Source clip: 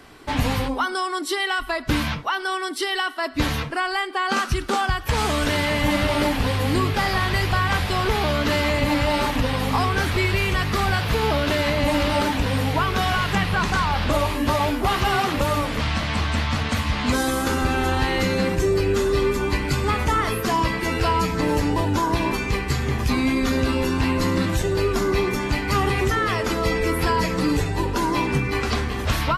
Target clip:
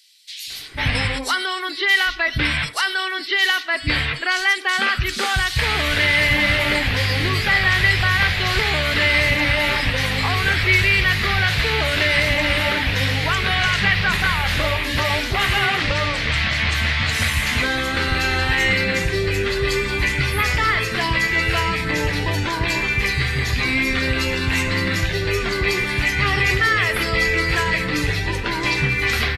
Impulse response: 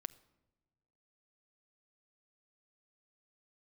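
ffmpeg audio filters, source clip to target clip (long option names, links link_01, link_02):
-filter_complex "[0:a]equalizer=frequency=125:width_type=o:width=1:gain=3,equalizer=frequency=250:width_type=o:width=1:gain=-4,equalizer=frequency=1000:width_type=o:width=1:gain=-6,equalizer=frequency=2000:width_type=o:width=1:gain=11,equalizer=frequency=4000:width_type=o:width=1:gain=8,acrossover=split=260|3900[link_01][link_02][link_03];[link_01]adelay=470[link_04];[link_02]adelay=500[link_05];[link_04][link_05][link_03]amix=inputs=3:normalize=0"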